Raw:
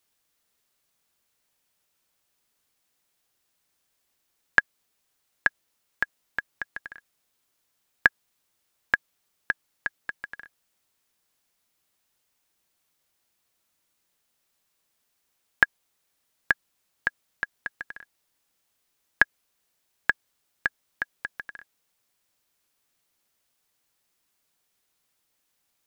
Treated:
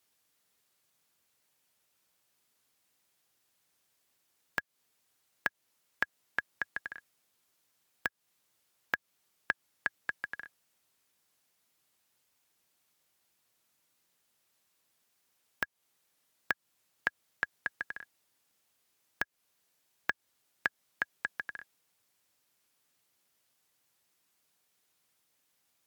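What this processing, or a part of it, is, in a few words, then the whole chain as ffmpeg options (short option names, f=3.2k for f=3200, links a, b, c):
podcast mastering chain: -af "highpass=f=79:w=0.5412,highpass=f=79:w=1.3066,deesser=0.5,acompressor=threshold=-26dB:ratio=4,alimiter=limit=-8.5dB:level=0:latency=1:release=284" -ar 48000 -c:a libmp3lame -b:a 96k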